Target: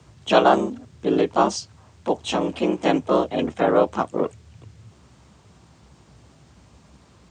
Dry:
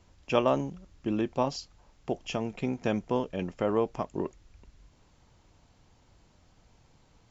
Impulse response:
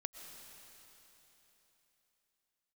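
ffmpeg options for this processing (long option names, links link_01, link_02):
-filter_complex "[0:a]asplit=3[link_01][link_02][link_03];[link_02]asetrate=52444,aresample=44100,atempo=0.840896,volume=-2dB[link_04];[link_03]asetrate=55563,aresample=44100,atempo=0.793701,volume=-7dB[link_05];[link_01][link_04][link_05]amix=inputs=3:normalize=0,afreqshift=57,volume=6.5dB"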